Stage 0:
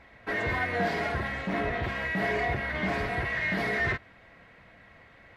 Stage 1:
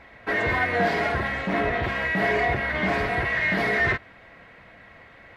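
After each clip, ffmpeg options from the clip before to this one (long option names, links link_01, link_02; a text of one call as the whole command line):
ffmpeg -i in.wav -af "bass=frequency=250:gain=-3,treble=frequency=4000:gain=-3,volume=6dB" out.wav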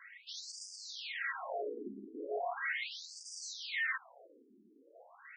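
ffmpeg -i in.wav -af "aeval=exprs='(tanh(35.5*val(0)+0.5)-tanh(0.5))/35.5':channel_layout=same,afftfilt=real='re*between(b*sr/1024,290*pow(6700/290,0.5+0.5*sin(2*PI*0.38*pts/sr))/1.41,290*pow(6700/290,0.5+0.5*sin(2*PI*0.38*pts/sr))*1.41)':imag='im*between(b*sr/1024,290*pow(6700/290,0.5+0.5*sin(2*PI*0.38*pts/sr))/1.41,290*pow(6700/290,0.5+0.5*sin(2*PI*0.38*pts/sr))*1.41)':win_size=1024:overlap=0.75" out.wav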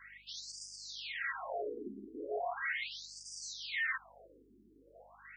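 ffmpeg -i in.wav -af "aeval=exprs='val(0)+0.000251*(sin(2*PI*50*n/s)+sin(2*PI*2*50*n/s)/2+sin(2*PI*3*50*n/s)/3+sin(2*PI*4*50*n/s)/4+sin(2*PI*5*50*n/s)/5)':channel_layout=same" out.wav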